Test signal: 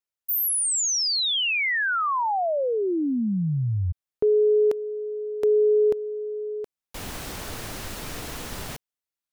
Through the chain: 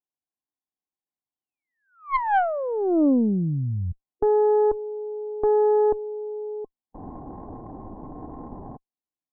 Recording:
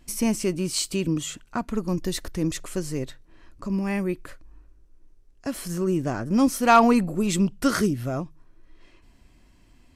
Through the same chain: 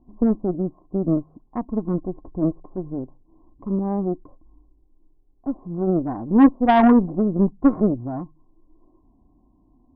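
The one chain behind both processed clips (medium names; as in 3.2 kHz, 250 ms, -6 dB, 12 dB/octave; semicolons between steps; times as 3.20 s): harmonic-percussive split harmonic +3 dB; rippled Chebyshev low-pass 1.1 kHz, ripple 9 dB; Chebyshev shaper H 3 -19 dB, 5 -29 dB, 6 -20 dB, 7 -32 dB, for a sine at -8.5 dBFS; trim +6 dB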